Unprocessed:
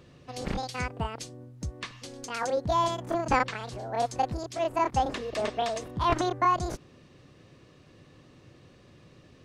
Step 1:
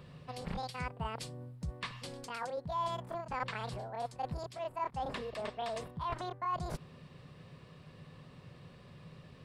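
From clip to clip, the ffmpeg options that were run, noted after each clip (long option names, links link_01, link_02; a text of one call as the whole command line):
ffmpeg -i in.wav -af "areverse,acompressor=threshold=-36dB:ratio=6,areverse,equalizer=frequency=160:width_type=o:width=0.33:gain=8,equalizer=frequency=315:width_type=o:width=0.33:gain=-12,equalizer=frequency=1000:width_type=o:width=0.33:gain=4,equalizer=frequency=6300:width_type=o:width=0.33:gain=-11" out.wav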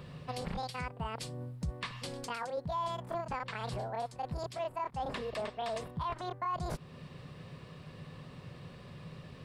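ffmpeg -i in.wav -af "alimiter=level_in=8.5dB:limit=-24dB:level=0:latency=1:release=266,volume=-8.5dB,volume=5dB" out.wav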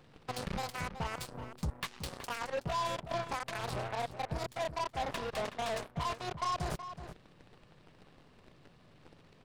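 ffmpeg -i in.wav -filter_complex "[0:a]aeval=exprs='0.0447*(cos(1*acos(clip(val(0)/0.0447,-1,1)))-cos(1*PI/2))+0.00178*(cos(5*acos(clip(val(0)/0.0447,-1,1)))-cos(5*PI/2))+0.01*(cos(7*acos(clip(val(0)/0.0447,-1,1)))-cos(7*PI/2))+0.00158*(cos(8*acos(clip(val(0)/0.0447,-1,1)))-cos(8*PI/2))':channel_layout=same,asplit=2[link_01][link_02];[link_02]adelay=373.2,volume=-10dB,highshelf=frequency=4000:gain=-8.4[link_03];[link_01][link_03]amix=inputs=2:normalize=0" out.wav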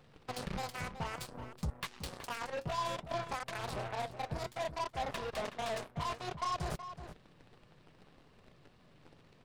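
ffmpeg -i in.wav -af "flanger=delay=1.5:depth=7:regen=-71:speed=0.59:shape=sinusoidal,volume=2.5dB" out.wav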